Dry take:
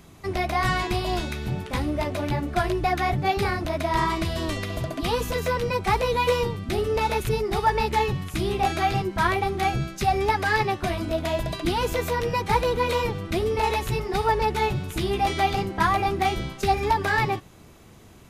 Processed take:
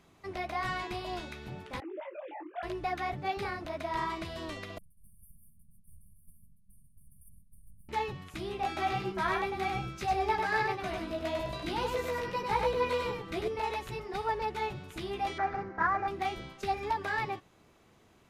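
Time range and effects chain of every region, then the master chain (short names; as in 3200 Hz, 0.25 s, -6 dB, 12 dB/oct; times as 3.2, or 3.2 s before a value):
1.8–2.63 sine-wave speech + compressor 2.5:1, threshold -25 dBFS + detuned doubles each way 44 cents
4.78–7.89 minimum comb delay 5.3 ms + robotiser 389 Hz + brick-wall FIR band-stop 220–8600 Hz
8.67–13.48 doubler 16 ms -4.5 dB + echo 98 ms -4 dB
15.38–16.08 CVSD 32 kbps + resonant high shelf 2300 Hz -11 dB, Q 3
whole clip: LPF 4000 Hz 6 dB/oct; low shelf 230 Hz -9.5 dB; gain -8.5 dB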